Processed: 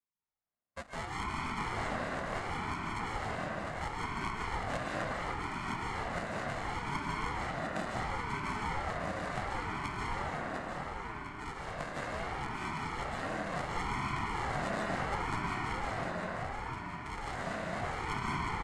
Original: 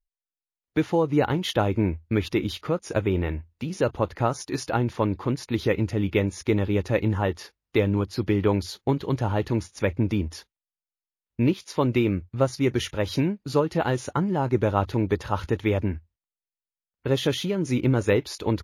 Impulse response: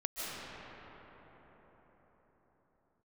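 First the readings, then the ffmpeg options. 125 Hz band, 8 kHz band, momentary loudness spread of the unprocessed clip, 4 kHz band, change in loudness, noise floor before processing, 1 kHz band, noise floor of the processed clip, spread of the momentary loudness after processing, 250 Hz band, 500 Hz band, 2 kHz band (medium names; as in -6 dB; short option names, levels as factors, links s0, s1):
-15.5 dB, -9.5 dB, 5 LU, -10.0 dB, -11.5 dB, under -85 dBFS, -3.0 dB, -45 dBFS, 5 LU, -16.5 dB, -15.5 dB, -2.5 dB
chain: -filter_complex "[0:a]highshelf=f=4500:g=8,bandreject=f=1500:w=12,acrossover=split=670|920[s0][s1][s2];[s0]asoftclip=type=tanh:threshold=0.0376[s3];[s3][s1][s2]amix=inputs=3:normalize=0,acrusher=samples=41:mix=1:aa=0.000001,highpass=f=360:w=0.5412,highpass=f=360:w=1.3066,equalizer=f=630:t=q:w=4:g=-9,equalizer=f=1000:t=q:w=4:g=9,equalizer=f=1800:t=q:w=4:g=4,equalizer=f=3100:t=q:w=4:g=-9,equalizer=f=5500:t=q:w=4:g=-8,lowpass=f=8300:w=0.5412,lowpass=f=8300:w=1.3066,aecho=1:1:704|1408|2112|2816|3520|4224|4928:0.501|0.281|0.157|0.088|0.0493|0.0276|0.0155[s4];[1:a]atrim=start_sample=2205[s5];[s4][s5]afir=irnorm=-1:irlink=0,aeval=exprs='val(0)*sin(2*PI*400*n/s+400*0.45/0.71*sin(2*PI*0.71*n/s))':c=same,volume=0.562"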